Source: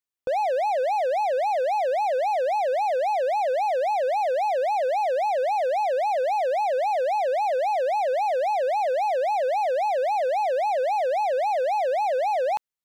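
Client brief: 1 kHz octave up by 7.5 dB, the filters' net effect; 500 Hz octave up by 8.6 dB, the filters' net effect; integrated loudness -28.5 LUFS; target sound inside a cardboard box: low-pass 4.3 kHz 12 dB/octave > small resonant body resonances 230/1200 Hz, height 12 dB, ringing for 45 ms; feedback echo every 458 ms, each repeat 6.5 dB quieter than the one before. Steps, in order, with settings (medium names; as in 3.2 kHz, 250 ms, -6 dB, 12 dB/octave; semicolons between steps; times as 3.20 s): low-pass 4.3 kHz 12 dB/octave; peaking EQ 500 Hz +8 dB; peaking EQ 1 kHz +6.5 dB; feedback delay 458 ms, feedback 47%, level -6.5 dB; small resonant body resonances 230/1200 Hz, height 12 dB, ringing for 45 ms; trim -14 dB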